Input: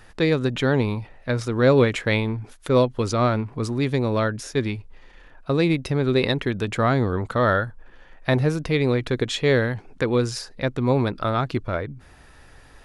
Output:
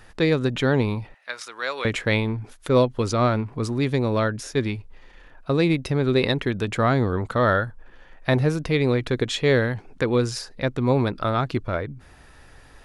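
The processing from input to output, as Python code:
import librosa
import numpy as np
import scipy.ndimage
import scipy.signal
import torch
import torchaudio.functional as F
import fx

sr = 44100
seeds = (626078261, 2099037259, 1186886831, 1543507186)

y = fx.highpass(x, sr, hz=1200.0, slope=12, at=(1.14, 1.85))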